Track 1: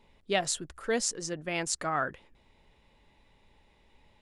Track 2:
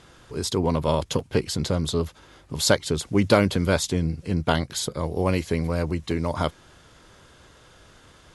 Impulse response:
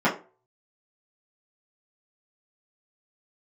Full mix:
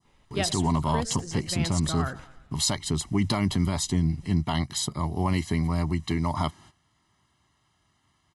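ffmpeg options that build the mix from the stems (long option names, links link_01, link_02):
-filter_complex "[0:a]asubboost=boost=6:cutoff=220,adelay=50,volume=-2dB,asplit=2[link_01][link_02];[link_02]volume=-17.5dB[link_03];[1:a]agate=range=-16dB:threshold=-47dB:ratio=16:detection=peak,highpass=79,aecho=1:1:1:0.88,volume=-2.5dB[link_04];[link_03]aecho=0:1:112|224|336|448|560|672|784:1|0.48|0.23|0.111|0.0531|0.0255|0.0122[link_05];[link_01][link_04][link_05]amix=inputs=3:normalize=0,adynamicequalizer=threshold=0.01:dfrequency=2500:dqfactor=0.84:tfrequency=2500:tqfactor=0.84:attack=5:release=100:ratio=0.375:range=2:mode=cutabove:tftype=bell,alimiter=limit=-14dB:level=0:latency=1:release=37"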